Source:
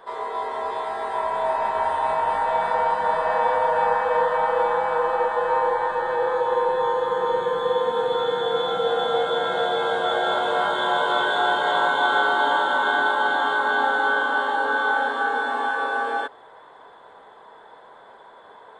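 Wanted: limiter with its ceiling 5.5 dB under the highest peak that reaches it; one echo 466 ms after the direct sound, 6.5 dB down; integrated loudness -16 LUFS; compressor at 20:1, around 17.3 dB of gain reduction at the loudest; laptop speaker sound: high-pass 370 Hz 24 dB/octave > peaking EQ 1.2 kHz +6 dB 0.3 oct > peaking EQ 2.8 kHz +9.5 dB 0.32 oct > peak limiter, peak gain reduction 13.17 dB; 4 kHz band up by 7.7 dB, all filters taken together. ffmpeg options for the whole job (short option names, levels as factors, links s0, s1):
-af "equalizer=f=4000:t=o:g=6,acompressor=threshold=0.02:ratio=20,alimiter=level_in=2.24:limit=0.0631:level=0:latency=1,volume=0.447,highpass=f=370:w=0.5412,highpass=f=370:w=1.3066,equalizer=f=1200:t=o:w=0.3:g=6,equalizer=f=2800:t=o:w=0.32:g=9.5,aecho=1:1:466:0.473,volume=31.6,alimiter=limit=0.376:level=0:latency=1"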